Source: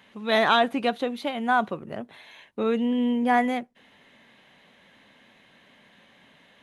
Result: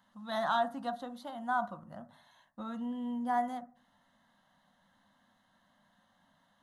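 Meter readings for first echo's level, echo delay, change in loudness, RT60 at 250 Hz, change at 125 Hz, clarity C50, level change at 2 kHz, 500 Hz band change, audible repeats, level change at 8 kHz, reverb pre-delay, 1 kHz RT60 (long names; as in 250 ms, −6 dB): no echo audible, no echo audible, −11.0 dB, 0.60 s, −10.5 dB, 17.5 dB, −14.0 dB, −13.0 dB, no echo audible, can't be measured, 3 ms, 0.40 s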